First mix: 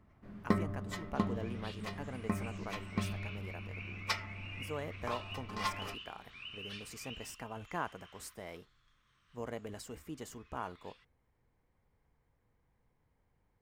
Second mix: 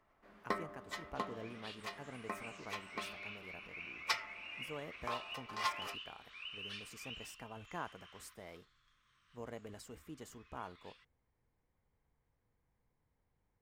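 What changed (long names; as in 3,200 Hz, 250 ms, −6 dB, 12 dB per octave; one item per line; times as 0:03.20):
speech −5.5 dB
first sound: add high-pass filter 530 Hz 12 dB per octave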